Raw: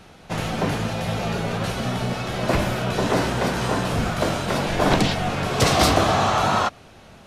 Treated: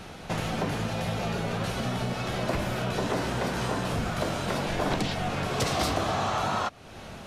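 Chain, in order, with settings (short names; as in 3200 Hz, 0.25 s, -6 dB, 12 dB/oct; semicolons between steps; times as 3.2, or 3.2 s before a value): compressor 2.5:1, threshold -36 dBFS, peak gain reduction 15.5 dB; gain +4.5 dB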